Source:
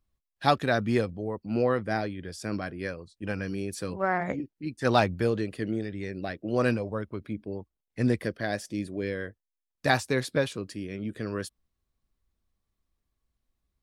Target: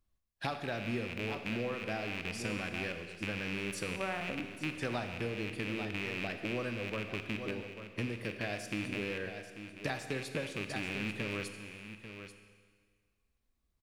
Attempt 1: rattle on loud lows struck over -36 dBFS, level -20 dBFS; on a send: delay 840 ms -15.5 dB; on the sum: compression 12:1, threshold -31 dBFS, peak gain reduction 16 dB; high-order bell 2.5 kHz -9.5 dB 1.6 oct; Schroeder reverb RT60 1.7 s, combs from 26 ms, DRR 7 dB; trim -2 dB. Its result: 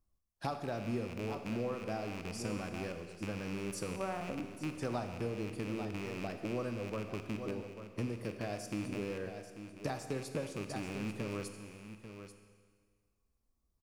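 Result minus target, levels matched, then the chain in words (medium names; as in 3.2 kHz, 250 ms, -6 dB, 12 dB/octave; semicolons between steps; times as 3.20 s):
2 kHz band -7.0 dB
rattle on loud lows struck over -36 dBFS, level -20 dBFS; on a send: delay 840 ms -15.5 dB; on the sum: compression 12:1, threshold -31 dBFS, peak gain reduction 16 dB; Schroeder reverb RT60 1.7 s, combs from 26 ms, DRR 7 dB; trim -2 dB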